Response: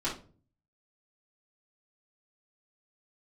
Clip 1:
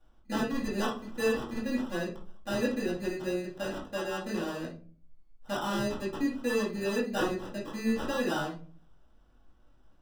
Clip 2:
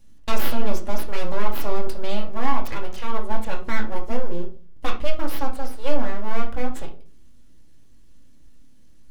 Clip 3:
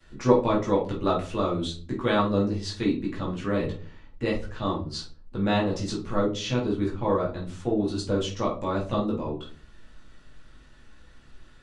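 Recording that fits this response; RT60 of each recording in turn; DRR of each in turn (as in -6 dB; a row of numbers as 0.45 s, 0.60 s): 1; 0.40 s, 0.40 s, 0.40 s; -8.5 dB, 0.5 dB, -18.5 dB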